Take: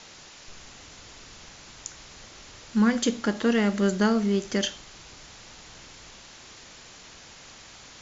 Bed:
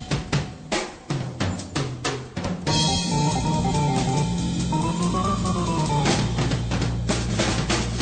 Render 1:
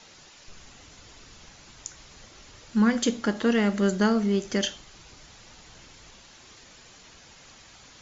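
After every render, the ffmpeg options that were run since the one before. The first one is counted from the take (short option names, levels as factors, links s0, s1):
-af "afftdn=nr=6:nf=-48"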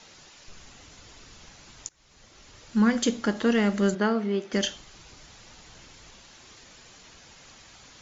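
-filter_complex "[0:a]asplit=3[s0][s1][s2];[s0]afade=t=out:st=3.94:d=0.02[s3];[s1]highpass=240,lowpass=3300,afade=t=in:st=3.94:d=0.02,afade=t=out:st=4.52:d=0.02[s4];[s2]afade=t=in:st=4.52:d=0.02[s5];[s3][s4][s5]amix=inputs=3:normalize=0,asplit=2[s6][s7];[s6]atrim=end=1.89,asetpts=PTS-STARTPTS,afade=t=out:st=1.886:d=0.004:c=hsin:silence=0.0749894[s8];[s7]atrim=start=1.89,asetpts=PTS-STARTPTS,afade=t=in:d=1.05:c=qsin:silence=0.0749894[s9];[s8][s9]concat=n=2:v=0:a=1"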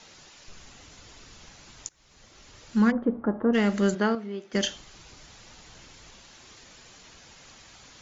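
-filter_complex "[0:a]asplit=3[s0][s1][s2];[s0]afade=t=out:st=2.9:d=0.02[s3];[s1]lowpass=f=1200:w=0.5412,lowpass=f=1200:w=1.3066,afade=t=in:st=2.9:d=0.02,afade=t=out:st=3.53:d=0.02[s4];[s2]afade=t=in:st=3.53:d=0.02[s5];[s3][s4][s5]amix=inputs=3:normalize=0,asplit=3[s6][s7][s8];[s6]atrim=end=4.152[s9];[s7]atrim=start=4.148:end=4.552,asetpts=PTS-STARTPTS,volume=0.398[s10];[s8]atrim=start=4.548[s11];[s9][s10]acrossfade=d=0.004:c1=hsin:c2=hsin[s12];[s12][s11]acrossfade=d=0.004:c1=hsin:c2=hsin"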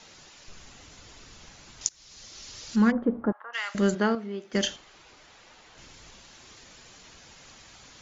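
-filter_complex "[0:a]asettb=1/sr,asplit=3[s0][s1][s2];[s0]atrim=end=1.814[s3];[s1]atrim=start=1.81:end=2.76,asetpts=PTS-STARTPTS,afade=t=in:d=0.004:c=qsin,afade=t=out:st=0.946:d=0.004:c=qsin,equalizer=f=5200:w=0.78:g=12.5[s4];[s2]atrim=start=2.756[s5];[s3][s4]acrossfade=d=0.004:c1=hsin:c2=qsin[s6];[s6][s5]acrossfade=d=0.004:c1=qsin:c2=hsin,asettb=1/sr,asplit=3[s7][s8][s9];[s7]atrim=end=3.324[s10];[s8]atrim=start=3.32:end=3.75,asetpts=PTS-STARTPTS,afade=t=in:d=0.004:c=qsin,afade=t=out:st=0.426:d=0.004:c=qsin,highpass=f=1000:w=0.5412,highpass=f=1000:w=1.3066[s11];[s9]atrim=start=3.746[s12];[s10][s11]acrossfade=d=0.004:c1=hsin:c2=qsin[s13];[s13][s12]acrossfade=d=0.004:c1=qsin:c2=hsin,asettb=1/sr,asplit=3[s14][s15][s16];[s14]atrim=end=4.764[s17];[s15]atrim=start=4.76:end=5.78,asetpts=PTS-STARTPTS,afade=t=in:d=0.004:c=qsin,afade=t=out:st=1.016:d=0.004:c=qsin,bass=f=250:g=-12,treble=f=4000:g=-8[s18];[s16]atrim=start=5.776[s19];[s17][s18]acrossfade=d=0.004:c1=hsin:c2=qsin[s20];[s20][s19]acrossfade=d=0.004:c1=qsin:c2=hsin"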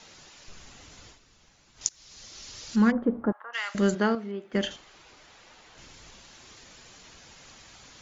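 -filter_complex "[0:a]asettb=1/sr,asplit=3[s0][s1][s2];[s0]atrim=end=4.314[s3];[s1]atrim=start=4.31:end=4.71,asetpts=PTS-STARTPTS,afade=t=in:d=0.004:c=qsin,afade=t=out:st=0.396:d=0.004:c=qsin,equalizer=f=5800:w=1.1:g=-13[s4];[s2]atrim=start=4.706[s5];[s3][s4]acrossfade=d=0.004:c1=hsin:c2=qsin[s6];[s6][s5]acrossfade=d=0.004:c1=qsin:c2=hsin,asplit=3[s7][s8][s9];[s7]atrim=end=1.19,asetpts=PTS-STARTPTS,afade=t=out:st=1.07:d=0.12:silence=0.281838[s10];[s8]atrim=start=1.19:end=1.74,asetpts=PTS-STARTPTS,volume=0.282[s11];[s9]atrim=start=1.74,asetpts=PTS-STARTPTS,afade=t=in:d=0.12:silence=0.281838[s12];[s10][s11][s12]concat=n=3:v=0:a=1"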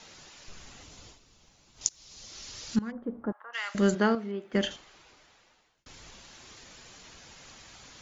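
-filter_complex "[0:a]asettb=1/sr,asplit=3[s0][s1][s2];[s0]atrim=end=0.834[s3];[s1]atrim=start=0.83:end=2.29,asetpts=PTS-STARTPTS,afade=t=in:d=0.004:c=qsin,afade=t=out:st=1.456:d=0.004:c=qsin,equalizer=f=1700:w=1.5:g=-5.5[s4];[s2]atrim=start=2.286[s5];[s3][s4]acrossfade=d=0.004:c1=hsin:c2=qsin[s6];[s6][s5]acrossfade=d=0.004:c1=qsin:c2=hsin,asplit=3[s7][s8][s9];[s7]atrim=end=2.79,asetpts=PTS-STARTPTS,afade=t=out:st=2.786:d=0.004:c=hsin:silence=0.0891251[s10];[s8]atrim=start=2.79:end=5.86,asetpts=PTS-STARTPTS,afade=t=in:d=1.12:silence=0.0891251,afade=t=out:st=1.86:d=1.21[s11];[s9]atrim=start=5.86,asetpts=PTS-STARTPTS,afade=t=in:d=0.004:c=hsin[s12];[s10][s11][s12]concat=n=3:v=0:a=1"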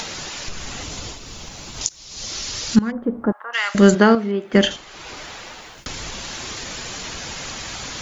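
-af "acompressor=mode=upward:threshold=0.0178:ratio=2.5,alimiter=level_in=4.22:limit=0.891:release=50:level=0:latency=1"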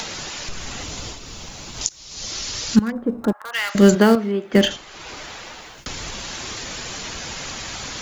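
-filter_complex "[0:a]acrossover=split=100|1100|1500[s0][s1][s2][s3];[s0]acrusher=samples=34:mix=1:aa=0.000001[s4];[s2]aeval=exprs='(mod(42.2*val(0)+1,2)-1)/42.2':c=same[s5];[s4][s1][s5][s3]amix=inputs=4:normalize=0"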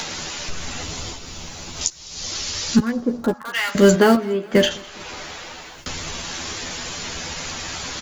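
-filter_complex "[0:a]asplit=2[s0][s1];[s1]adelay=12,volume=0.596[s2];[s0][s2]amix=inputs=2:normalize=0,aecho=1:1:208|416|624:0.0631|0.0322|0.0164"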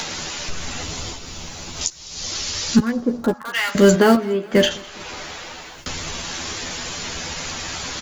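-af "volume=1.12,alimiter=limit=0.708:level=0:latency=1"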